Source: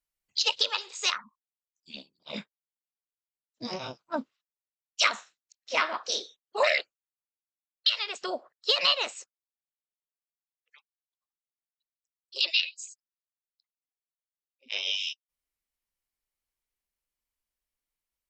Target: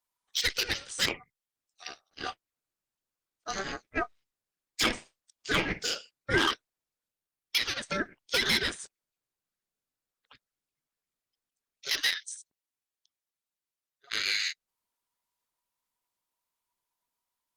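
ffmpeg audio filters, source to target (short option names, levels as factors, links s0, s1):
-af "tremolo=f=260:d=0.462,asetrate=45938,aresample=44100,asoftclip=type=tanh:threshold=0.0794,aeval=exprs='val(0)*sin(2*PI*970*n/s)':c=same,volume=2.37" -ar 48000 -c:a libopus -b:a 32k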